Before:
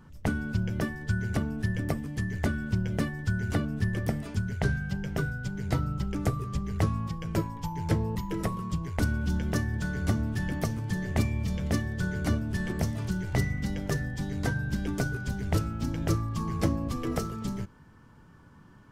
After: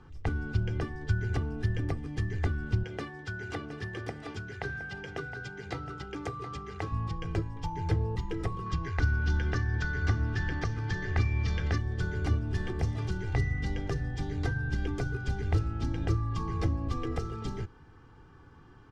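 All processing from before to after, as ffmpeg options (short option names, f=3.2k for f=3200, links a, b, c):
-filter_complex "[0:a]asettb=1/sr,asplit=3[a][b][c];[a]atrim=end=2.834[d];[b]atrim=start=2.83:end=6.92,asetpts=PTS-STARTPTS,afade=t=in:d=0.004:c=qsin,afade=t=out:st=4.086:d=0.004:c=qsin,highpass=f=400:p=1,highshelf=f=9.8k:g=-4.5,aecho=1:1:716:0.237,atrim=end_sample=180369[e];[c]atrim=start=6.916[f];[d][e]acrossfade=d=0.004:c1=hsin:c2=qsin[g];[g][f]acrossfade=d=0.004:c1=qsin:c2=hsin,asettb=1/sr,asplit=3[h][i][j];[h]atrim=end=8.664[k];[i]atrim=start=8.66:end=11.78,asetpts=PTS-STARTPTS,afade=t=in:d=0.004:c=qsin,afade=t=out:st=3.116:d=0.004:c=qsin,lowpass=f=5.7k:t=q:w=1.7,equalizer=f=1.6k:t=o:w=0.88:g=10[l];[j]atrim=start=11.776[m];[k][l]acrossfade=d=0.004:c1=hsin:c2=qsin[n];[n][m]acrossfade=d=0.004:c1=qsin:c2=hsin,lowpass=5k,aecho=1:1:2.5:0.62,acrossover=split=150[o][p];[p]acompressor=threshold=-35dB:ratio=3[q];[o][q]amix=inputs=2:normalize=0"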